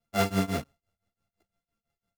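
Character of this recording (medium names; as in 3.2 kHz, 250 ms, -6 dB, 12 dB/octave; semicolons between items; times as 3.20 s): a buzz of ramps at a fixed pitch in blocks of 64 samples; tremolo triangle 5.9 Hz, depth 100%; a shimmering, thickened sound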